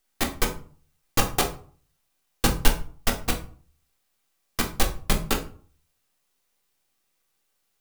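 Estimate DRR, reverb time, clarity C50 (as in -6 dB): 1.5 dB, 0.45 s, 10.5 dB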